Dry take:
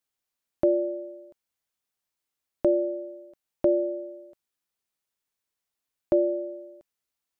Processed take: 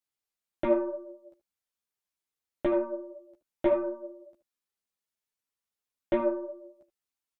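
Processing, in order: added harmonics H 4 -16 dB, 6 -28 dB, 7 -29 dB, 8 -40 dB, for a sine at -12 dBFS; echo 75 ms -14 dB; ensemble effect

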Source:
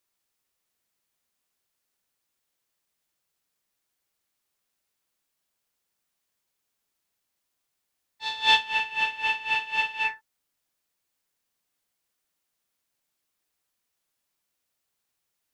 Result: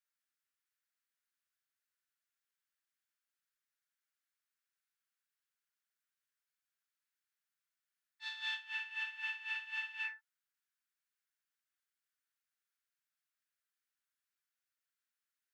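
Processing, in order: compressor 6:1, threshold -25 dBFS, peak gain reduction 11 dB; ladder high-pass 1300 Hz, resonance 55%; gain -3.5 dB

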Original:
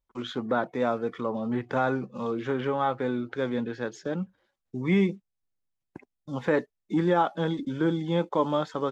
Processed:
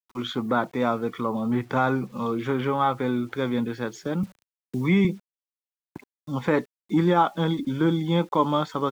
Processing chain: comb 0.9 ms, depth 34%; bit-crush 10-bit; 4.23–5.05 three-band squash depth 40%; gain +3.5 dB

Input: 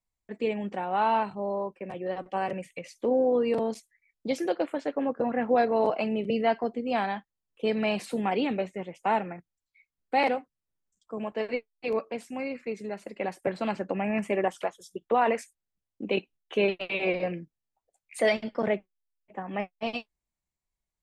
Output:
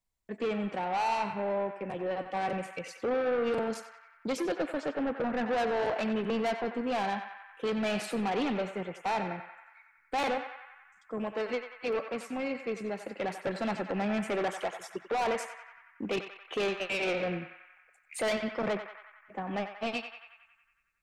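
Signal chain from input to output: soft clip -28 dBFS, distortion -8 dB; on a send: narrowing echo 92 ms, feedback 74%, band-pass 1600 Hz, level -6.5 dB; on the sum: gain +1.5 dB

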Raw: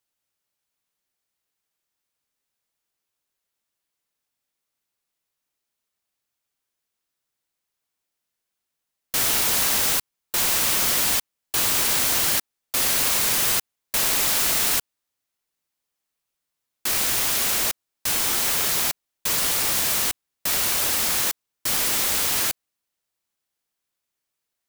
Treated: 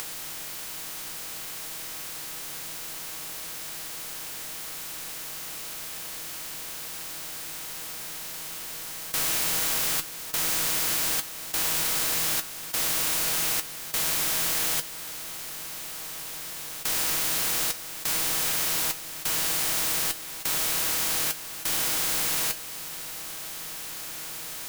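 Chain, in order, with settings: per-bin compression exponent 0.2; resonator 160 Hz, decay 0.15 s, harmonics all, mix 80%; upward compressor, threshold -28 dBFS; gain -4 dB

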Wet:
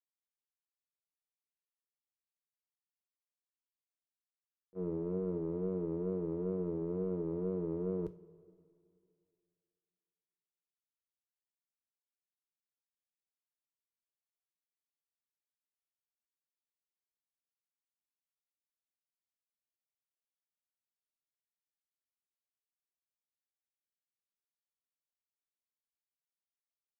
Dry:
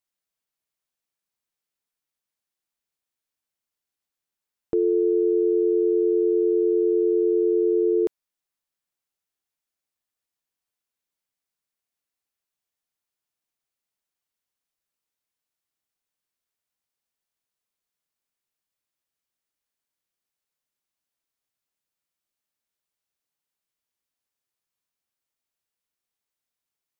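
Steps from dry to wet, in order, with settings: octaver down 1 oct, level +3 dB; gate -15 dBFS, range -42 dB; wow and flutter 110 cents; two-slope reverb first 0.3 s, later 2.5 s, from -18 dB, DRR 9 dB

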